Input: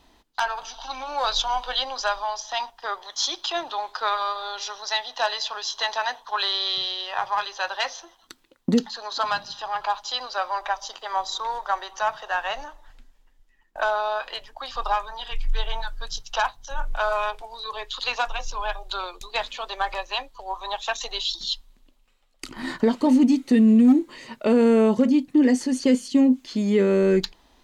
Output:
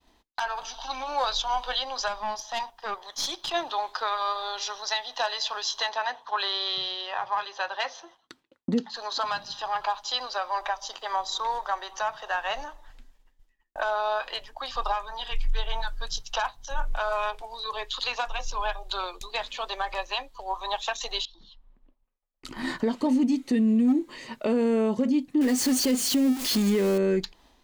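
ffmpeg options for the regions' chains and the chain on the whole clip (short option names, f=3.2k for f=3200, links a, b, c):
-filter_complex "[0:a]asettb=1/sr,asplit=3[a][b][c];[a]atrim=end=2.084[d];[b]atrim=start=2.08:end=3.54,asetpts=PTS-STARTPTS,afade=t=in:d=0.004:c=qsin,afade=t=out:st=1.456:d=0.004:c=qsin,equalizer=f=4.2k:w=0.45:g=-2.5,aeval=exprs='(tanh(11.2*val(0)+0.4)-tanh(0.4))/11.2':c=same[e];[c]atrim=start=3.536[f];[d][e]acrossfade=d=0.004:c1=hsin:c2=qsin[g];[g][f]acrossfade=d=0.004:c1=qsin:c2=hsin,asettb=1/sr,asplit=3[h][i][j];[h]atrim=end=5.894[k];[i]atrim=start=5.89:end=8.94,asetpts=PTS-STARTPTS,afade=t=in:d=0.004:c=qsin,afade=t=out:st=3.046:d=0.004:c=qsin,highpass=74,aemphasis=mode=reproduction:type=50kf[l];[j]atrim=start=8.936[m];[k][l]acrossfade=d=0.004:c1=hsin:c2=qsin[n];[n][m]acrossfade=d=0.004:c1=qsin:c2=hsin,asettb=1/sr,asplit=3[o][p][q];[o]atrim=end=21.254[r];[p]atrim=start=21.25:end=22.45,asetpts=PTS-STARTPTS,afade=t=in:d=0.004:c=qsin,afade=t=out:st=1.196:d=0.004:c=qsin,lowpass=1.4k,acompressor=threshold=-49dB:ratio=4:attack=3.2:release=140:knee=1:detection=peak[s];[q]atrim=start=22.446[t];[r][s]acrossfade=d=0.004:c1=hsin:c2=qsin[u];[u][t]acrossfade=d=0.004:c1=qsin:c2=hsin,asettb=1/sr,asplit=3[v][w][x];[v]atrim=end=25.414[y];[w]atrim=start=25.41:end=26.98,asetpts=PTS-STARTPTS,afade=t=in:d=0.004:c=qsin,afade=t=out:st=1.566:d=0.004:c=qsin,aeval=exprs='val(0)+0.5*0.0501*sgn(val(0))':c=same,highshelf=f=4.4k:g=7[z];[x]atrim=start=26.976[aa];[y][z]acrossfade=d=0.004:c1=hsin:c2=qsin[ab];[ab][aa]acrossfade=d=0.004:c1=qsin:c2=hsin,bandreject=f=1.4k:w=26,agate=range=-33dB:threshold=-52dB:ratio=3:detection=peak,alimiter=limit=-16.5dB:level=0:latency=1:release=216"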